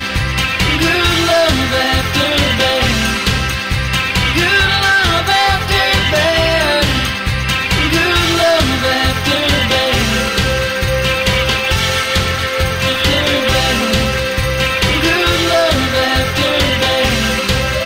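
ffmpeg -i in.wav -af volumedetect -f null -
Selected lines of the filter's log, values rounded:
mean_volume: -13.8 dB
max_volume: -5.1 dB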